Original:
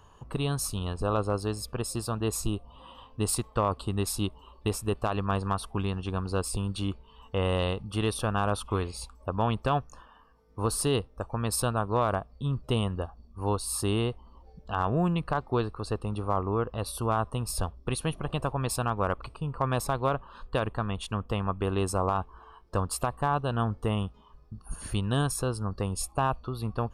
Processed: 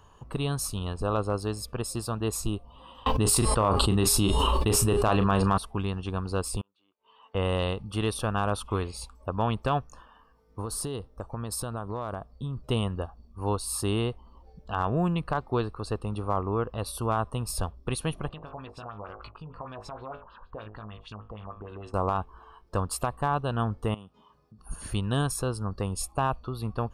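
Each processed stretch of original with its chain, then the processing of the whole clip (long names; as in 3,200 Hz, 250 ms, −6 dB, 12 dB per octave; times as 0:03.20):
0:03.06–0:05.58: double-tracking delay 36 ms −12 dB + hum removal 408.5 Hz, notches 26 + envelope flattener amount 100%
0:06.61–0:07.35: gate with flip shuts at −28 dBFS, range −29 dB + band-pass filter 520–3,200 Hz
0:10.60–0:12.64: parametric band 2,400 Hz −6 dB 0.68 octaves + downward compressor 12 to 1, threshold −28 dBFS
0:18.29–0:21.94: tuned comb filter 53 Hz, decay 0.2 s, mix 100% + downward compressor, threshold −38 dBFS + auto-filter low-pass sine 6.5 Hz 690–5,300 Hz
0:23.94–0:24.59: high-pass filter 140 Hz + downward compressor 2 to 1, threshold −53 dBFS
whole clip: no processing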